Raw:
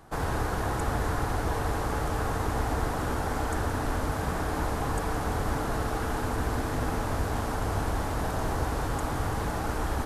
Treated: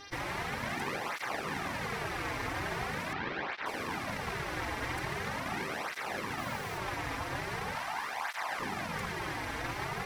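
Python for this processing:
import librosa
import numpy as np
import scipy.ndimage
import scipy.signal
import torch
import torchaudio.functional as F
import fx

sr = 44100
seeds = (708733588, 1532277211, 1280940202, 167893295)

y = fx.band_shelf(x, sr, hz=1000.0, db=10.5, octaves=1.1)
y = np.abs(y)
y = fx.dmg_buzz(y, sr, base_hz=400.0, harmonics=15, level_db=-42.0, tilt_db=-2, odd_only=False)
y = fx.lowpass(y, sr, hz=4300.0, slope=24, at=(3.13, 3.66))
y = fx.quant_dither(y, sr, seeds[0], bits=8, dither='triangular', at=(6.38, 6.78))
y = fx.low_shelf_res(y, sr, hz=560.0, db=-11.0, q=1.5, at=(7.75, 8.6))
y = fx.flanger_cancel(y, sr, hz=0.42, depth_ms=5.5)
y = y * 10.0 ** (-5.0 / 20.0)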